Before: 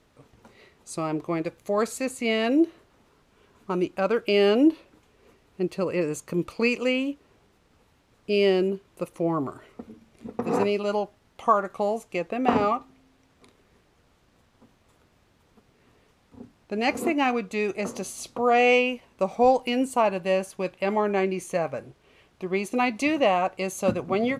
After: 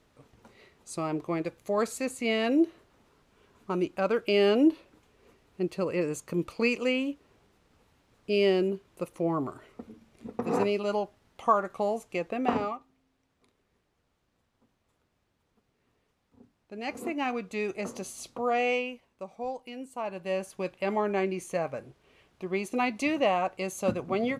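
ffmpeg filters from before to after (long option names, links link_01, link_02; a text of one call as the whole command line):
ffmpeg -i in.wav -af "volume=16.5dB,afade=type=out:start_time=12.36:duration=0.41:silence=0.334965,afade=type=in:start_time=16.73:duration=0.84:silence=0.421697,afade=type=out:start_time=18.24:duration=1.03:silence=0.281838,afade=type=in:start_time=19.92:duration=0.67:silence=0.251189" out.wav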